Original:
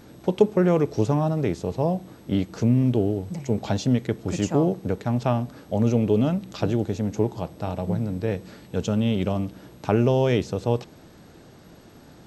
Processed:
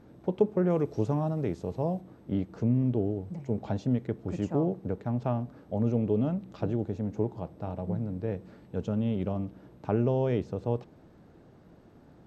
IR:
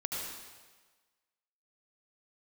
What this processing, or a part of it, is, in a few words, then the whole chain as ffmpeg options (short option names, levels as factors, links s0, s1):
through cloth: -filter_complex "[0:a]asettb=1/sr,asplit=3[s0][s1][s2];[s0]atrim=end=0.704[s3];[s1]atrim=start=0.7:end=2.01,asetpts=PTS-STARTPTS,afade=t=in:d=0.004:c=qsin,afade=t=out:st=1.306:d=0.004:c=qsin,highshelf=f=3600:g=9[s4];[s2]atrim=start=2.006[s5];[s3][s4]acrossfade=d=0.004:c1=hsin:c2=qsin[s6];[s6][s5]acrossfade=d=0.004:c1=qsin:c2=hsin,highshelf=f=2500:g=-17,volume=0.501"